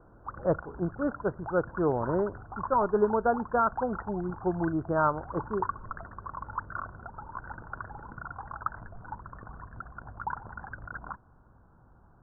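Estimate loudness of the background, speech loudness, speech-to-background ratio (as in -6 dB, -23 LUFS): -41.0 LUFS, -29.5 LUFS, 11.5 dB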